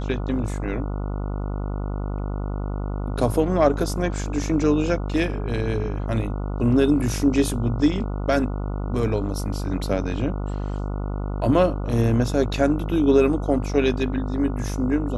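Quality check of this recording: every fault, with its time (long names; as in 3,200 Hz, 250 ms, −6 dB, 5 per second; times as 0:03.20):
mains buzz 50 Hz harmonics 29 −27 dBFS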